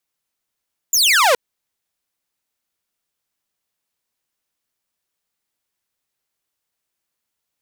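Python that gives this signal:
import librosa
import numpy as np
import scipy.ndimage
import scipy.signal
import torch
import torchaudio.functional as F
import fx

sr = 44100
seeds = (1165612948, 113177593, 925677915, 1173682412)

y = fx.laser_zap(sr, level_db=-8.5, start_hz=7400.0, end_hz=460.0, length_s=0.42, wave='saw')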